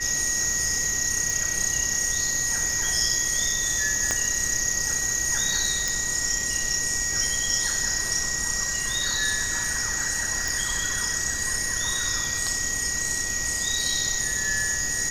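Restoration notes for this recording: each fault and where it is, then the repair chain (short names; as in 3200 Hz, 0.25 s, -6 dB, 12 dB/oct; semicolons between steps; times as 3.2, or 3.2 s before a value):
tone 1900 Hz -31 dBFS
1.3 pop
4.11 pop -9 dBFS
5.88 pop
10.48 pop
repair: de-click; notch 1900 Hz, Q 30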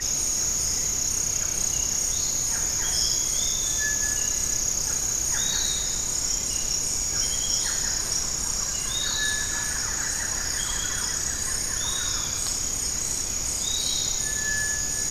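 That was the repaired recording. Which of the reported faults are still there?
4.11 pop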